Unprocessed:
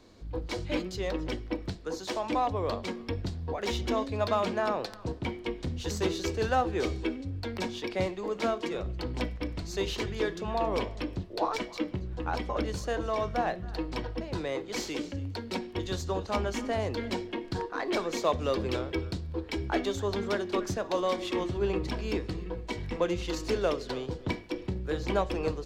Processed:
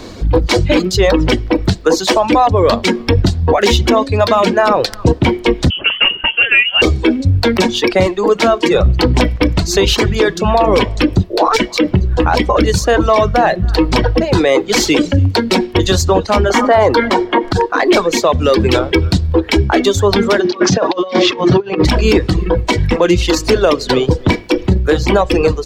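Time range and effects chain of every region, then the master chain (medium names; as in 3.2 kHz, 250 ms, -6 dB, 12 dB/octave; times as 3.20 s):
5.70–6.82 s: high-pass 270 Hz + frequency inversion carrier 3.2 kHz
16.50–17.53 s: peaking EQ 1 kHz +14.5 dB 2.6 oct + band-stop 2.6 kHz, Q 8.2
20.40–21.85 s: elliptic band-pass 130–5600 Hz, stop band 50 dB + compressor with a negative ratio -35 dBFS, ratio -0.5
whole clip: reverb removal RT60 0.89 s; gain riding within 4 dB 0.5 s; loudness maximiser +23.5 dB; trim -1 dB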